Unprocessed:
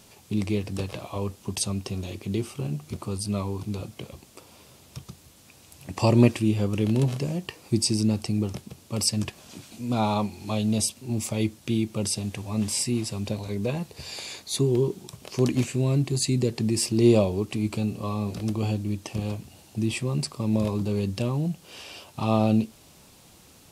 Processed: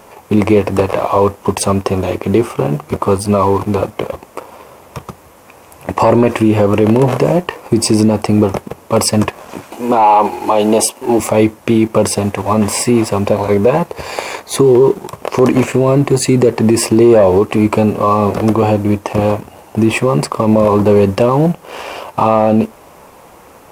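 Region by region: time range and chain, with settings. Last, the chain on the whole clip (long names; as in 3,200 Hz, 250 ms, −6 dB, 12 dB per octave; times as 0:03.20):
0:09.72–0:11.20: bass and treble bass −13 dB, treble +2 dB + hollow resonant body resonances 330/850/2,900 Hz, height 8 dB, ringing for 20 ms
whole clip: octave-band graphic EQ 125/500/1,000/2,000/4,000/8,000 Hz −4/+9/+11/+5/−9/−4 dB; leveller curve on the samples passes 1; boost into a limiter +12 dB; level −1 dB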